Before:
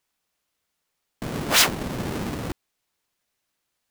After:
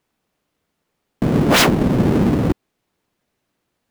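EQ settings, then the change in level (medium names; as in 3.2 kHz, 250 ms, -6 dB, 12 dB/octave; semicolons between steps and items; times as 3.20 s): tone controls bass +6 dB, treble -5 dB; peaking EQ 320 Hz +9.5 dB 2.8 oct; +3.5 dB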